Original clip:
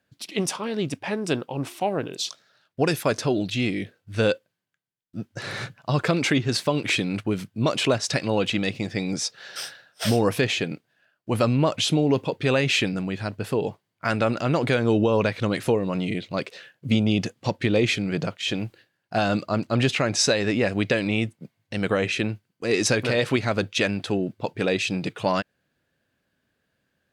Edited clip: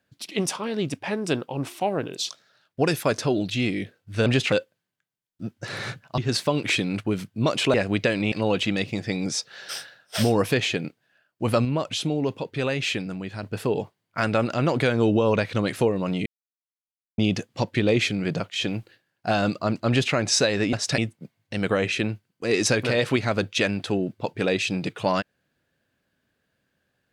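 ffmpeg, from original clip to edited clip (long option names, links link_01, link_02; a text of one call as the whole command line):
ffmpeg -i in.wav -filter_complex "[0:a]asplit=12[link_01][link_02][link_03][link_04][link_05][link_06][link_07][link_08][link_09][link_10][link_11][link_12];[link_01]atrim=end=4.262[link_13];[link_02]atrim=start=19.748:end=20.012[link_14];[link_03]atrim=start=4.258:end=5.922[link_15];[link_04]atrim=start=6.378:end=7.942[link_16];[link_05]atrim=start=20.598:end=21.182[link_17];[link_06]atrim=start=8.188:end=11.522[link_18];[link_07]atrim=start=11.518:end=13.302,asetpts=PTS-STARTPTS,volume=-4.5dB[link_19];[link_08]atrim=start=13.298:end=16.13,asetpts=PTS-STARTPTS,afade=type=out:start_time=2.828:duration=0.004:curve=hsin[link_20];[link_09]atrim=start=16.13:end=17.05,asetpts=PTS-STARTPTS,volume=0[link_21];[link_10]atrim=start=17.05:end=20.602,asetpts=PTS-STARTPTS,afade=type=in:duration=0.004:curve=hsin[link_22];[link_11]atrim=start=7.938:end=8.192[link_23];[link_12]atrim=start=21.178[link_24];[link_13][link_14]acrossfade=duration=0.004:curve1=hsin:curve2=hsin[link_25];[link_25][link_15]acrossfade=duration=0.004:curve1=hsin:curve2=hsin[link_26];[link_26][link_16]acrossfade=duration=0.004:curve1=hsin:curve2=hsin[link_27];[link_27][link_17]acrossfade=duration=0.004:curve1=hsin:curve2=hsin[link_28];[link_28][link_18]acrossfade=duration=0.004:curve1=hsin:curve2=hsin[link_29];[link_29][link_19]acrossfade=duration=0.004:curve1=hsin:curve2=hsin[link_30];[link_20][link_21][link_22]concat=n=3:v=0:a=1[link_31];[link_30][link_31]acrossfade=duration=0.004:curve1=hsin:curve2=hsin[link_32];[link_32][link_23]acrossfade=duration=0.004:curve1=hsin:curve2=hsin[link_33];[link_33][link_24]acrossfade=duration=0.004:curve1=hsin:curve2=hsin" out.wav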